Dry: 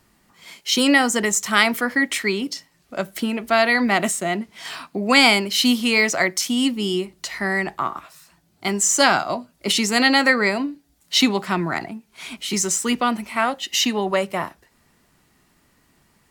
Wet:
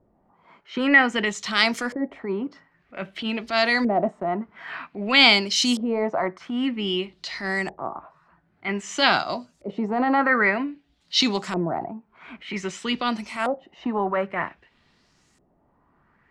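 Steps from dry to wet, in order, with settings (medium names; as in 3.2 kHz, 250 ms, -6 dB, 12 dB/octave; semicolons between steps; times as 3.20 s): transient shaper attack -8 dB, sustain 0 dB; LFO low-pass saw up 0.52 Hz 540–7800 Hz; trim -3 dB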